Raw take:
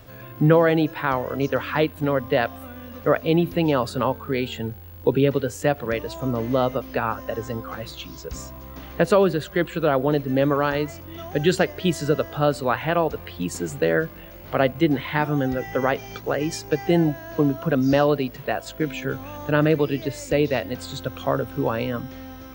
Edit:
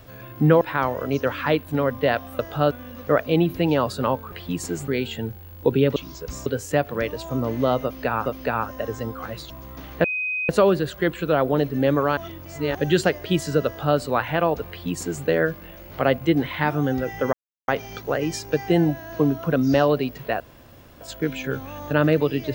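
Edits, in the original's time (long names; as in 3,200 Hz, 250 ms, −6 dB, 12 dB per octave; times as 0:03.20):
0:00.61–0:00.90: remove
0:06.75–0:07.17: repeat, 2 plays
0:07.99–0:08.49: move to 0:05.37
0:09.03: insert tone 2,510 Hz −23 dBFS 0.45 s
0:10.71–0:11.29: reverse
0:12.20–0:12.52: duplicate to 0:02.68
0:13.23–0:13.79: duplicate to 0:04.29
0:15.87: splice in silence 0.35 s
0:18.59: splice in room tone 0.61 s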